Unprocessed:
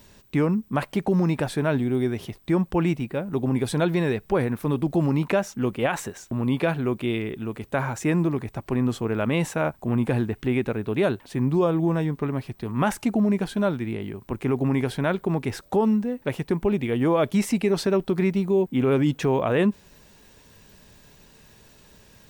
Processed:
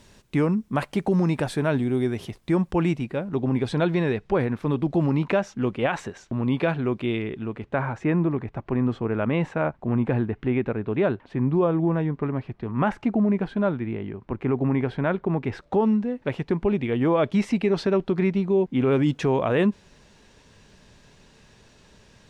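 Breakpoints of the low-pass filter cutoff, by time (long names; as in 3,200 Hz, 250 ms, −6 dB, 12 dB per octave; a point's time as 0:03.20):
0:02.74 11,000 Hz
0:03.46 4,500 Hz
0:07.13 4,500 Hz
0:07.84 2,300 Hz
0:15.28 2,300 Hz
0:15.94 4,100 Hz
0:18.59 4,100 Hz
0:19.10 6,700 Hz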